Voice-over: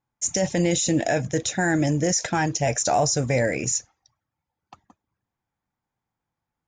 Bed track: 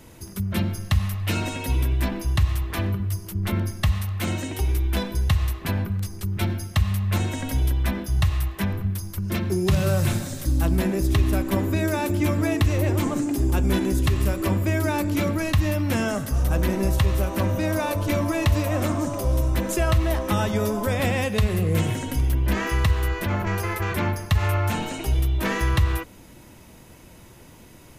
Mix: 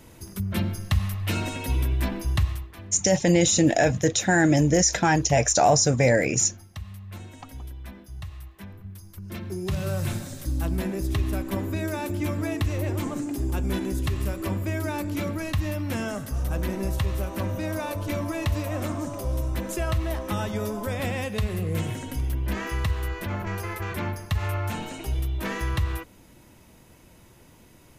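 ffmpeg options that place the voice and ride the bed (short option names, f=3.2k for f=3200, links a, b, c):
-filter_complex "[0:a]adelay=2700,volume=2.5dB[a];[1:a]volume=9dB,afade=t=out:st=2.38:d=0.34:silence=0.188365,afade=t=in:st=8.77:d=1.36:silence=0.281838[b];[a][b]amix=inputs=2:normalize=0"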